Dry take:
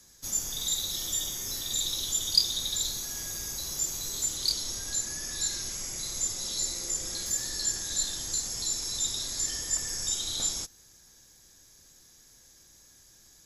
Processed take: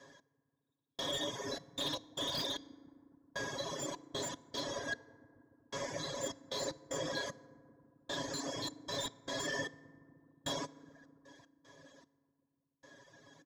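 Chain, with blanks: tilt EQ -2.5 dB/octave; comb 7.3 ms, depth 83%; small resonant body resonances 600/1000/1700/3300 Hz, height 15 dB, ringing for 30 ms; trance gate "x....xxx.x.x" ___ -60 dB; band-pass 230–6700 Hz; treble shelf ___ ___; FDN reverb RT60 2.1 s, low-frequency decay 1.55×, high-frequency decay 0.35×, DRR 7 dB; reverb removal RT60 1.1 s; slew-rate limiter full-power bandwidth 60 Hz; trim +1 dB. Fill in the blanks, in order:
76 bpm, 3.9 kHz, -9 dB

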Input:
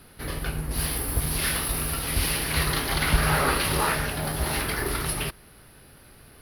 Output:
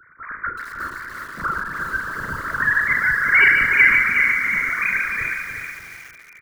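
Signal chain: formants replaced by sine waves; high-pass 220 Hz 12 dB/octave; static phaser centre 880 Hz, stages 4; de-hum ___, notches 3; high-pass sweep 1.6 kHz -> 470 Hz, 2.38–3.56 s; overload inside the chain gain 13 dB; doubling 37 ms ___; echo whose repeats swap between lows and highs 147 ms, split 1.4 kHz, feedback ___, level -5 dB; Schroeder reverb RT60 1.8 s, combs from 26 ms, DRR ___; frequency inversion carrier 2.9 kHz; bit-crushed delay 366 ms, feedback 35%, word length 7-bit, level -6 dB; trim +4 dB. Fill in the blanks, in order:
318.8 Hz, -8.5 dB, 70%, 15 dB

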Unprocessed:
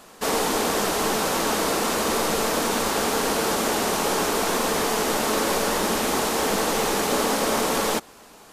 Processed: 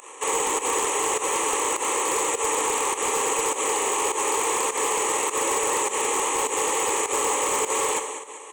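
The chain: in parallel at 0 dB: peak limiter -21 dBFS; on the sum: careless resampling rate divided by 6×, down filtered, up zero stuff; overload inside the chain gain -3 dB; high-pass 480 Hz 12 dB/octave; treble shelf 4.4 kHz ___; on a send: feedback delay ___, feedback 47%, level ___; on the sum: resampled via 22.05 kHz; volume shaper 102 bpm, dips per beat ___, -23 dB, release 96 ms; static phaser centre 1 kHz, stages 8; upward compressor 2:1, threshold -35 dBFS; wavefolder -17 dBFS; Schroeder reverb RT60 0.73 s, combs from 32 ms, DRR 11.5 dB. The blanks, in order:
-8 dB, 195 ms, -10 dB, 1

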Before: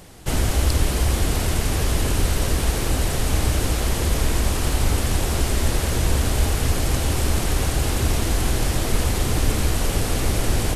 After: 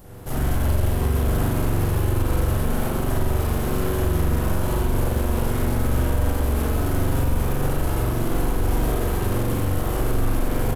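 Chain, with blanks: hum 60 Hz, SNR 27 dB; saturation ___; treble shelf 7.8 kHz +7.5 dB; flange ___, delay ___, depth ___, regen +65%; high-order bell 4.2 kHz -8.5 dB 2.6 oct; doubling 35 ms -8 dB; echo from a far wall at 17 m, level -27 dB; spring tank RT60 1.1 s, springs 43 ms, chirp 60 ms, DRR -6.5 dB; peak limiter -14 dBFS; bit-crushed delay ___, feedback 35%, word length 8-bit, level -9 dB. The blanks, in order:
-18.5 dBFS, 1.3 Hz, 9.7 ms, 3.8 ms, 129 ms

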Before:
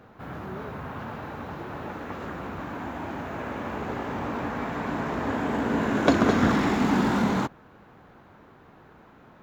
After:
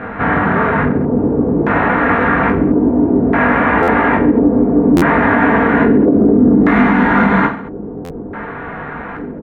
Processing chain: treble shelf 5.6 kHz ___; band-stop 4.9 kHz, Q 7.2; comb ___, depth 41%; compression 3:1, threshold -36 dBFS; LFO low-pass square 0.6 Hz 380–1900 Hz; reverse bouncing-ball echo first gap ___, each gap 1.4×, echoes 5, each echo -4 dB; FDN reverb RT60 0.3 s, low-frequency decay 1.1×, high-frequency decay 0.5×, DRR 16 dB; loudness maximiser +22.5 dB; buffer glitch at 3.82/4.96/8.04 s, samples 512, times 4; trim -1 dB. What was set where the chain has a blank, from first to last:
-3 dB, 4.3 ms, 20 ms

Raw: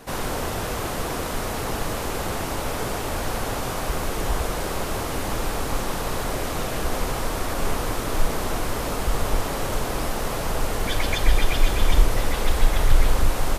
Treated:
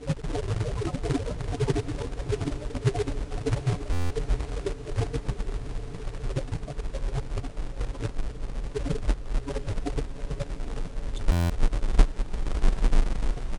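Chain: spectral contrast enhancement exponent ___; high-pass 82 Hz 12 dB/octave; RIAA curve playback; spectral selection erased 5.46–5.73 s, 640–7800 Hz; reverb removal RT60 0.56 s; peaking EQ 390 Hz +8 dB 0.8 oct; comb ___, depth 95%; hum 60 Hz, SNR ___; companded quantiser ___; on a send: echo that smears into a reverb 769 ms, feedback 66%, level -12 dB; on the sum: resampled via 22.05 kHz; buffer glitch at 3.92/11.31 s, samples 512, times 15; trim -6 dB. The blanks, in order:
3.7, 7 ms, 21 dB, 4-bit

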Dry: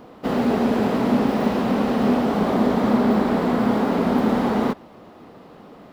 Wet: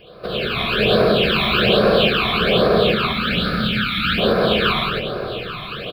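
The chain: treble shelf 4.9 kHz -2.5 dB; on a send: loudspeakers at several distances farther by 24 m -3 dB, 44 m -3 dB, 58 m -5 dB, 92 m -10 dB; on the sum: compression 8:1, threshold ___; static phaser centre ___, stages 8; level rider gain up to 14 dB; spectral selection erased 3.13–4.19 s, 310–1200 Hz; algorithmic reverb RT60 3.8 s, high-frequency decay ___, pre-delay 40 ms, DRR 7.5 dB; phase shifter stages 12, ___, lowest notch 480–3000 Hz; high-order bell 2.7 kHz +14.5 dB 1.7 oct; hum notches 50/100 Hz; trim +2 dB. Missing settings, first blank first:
-23 dBFS, 1.3 kHz, 0.55×, 1.2 Hz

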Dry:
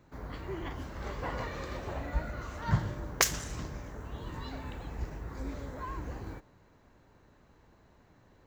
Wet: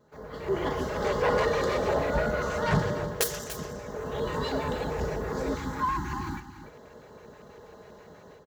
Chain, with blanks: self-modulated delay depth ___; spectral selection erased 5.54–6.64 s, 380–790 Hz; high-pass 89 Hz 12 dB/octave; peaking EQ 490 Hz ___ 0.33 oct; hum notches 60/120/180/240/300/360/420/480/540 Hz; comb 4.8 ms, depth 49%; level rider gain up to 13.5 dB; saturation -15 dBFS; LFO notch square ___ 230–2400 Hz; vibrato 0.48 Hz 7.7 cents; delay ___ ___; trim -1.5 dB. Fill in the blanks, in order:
0.61 ms, +12.5 dB, 6.2 Hz, 291 ms, -12 dB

